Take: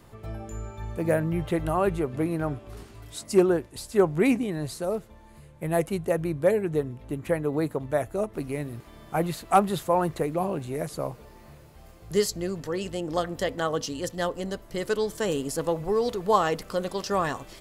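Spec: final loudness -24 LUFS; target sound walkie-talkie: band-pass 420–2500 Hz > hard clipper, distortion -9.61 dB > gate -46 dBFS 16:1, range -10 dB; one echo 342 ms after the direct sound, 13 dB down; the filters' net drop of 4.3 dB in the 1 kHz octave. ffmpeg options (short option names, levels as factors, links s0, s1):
-af "highpass=420,lowpass=2500,equalizer=f=1000:t=o:g=-5.5,aecho=1:1:342:0.224,asoftclip=type=hard:threshold=0.0562,agate=range=0.316:threshold=0.00501:ratio=16,volume=2.99"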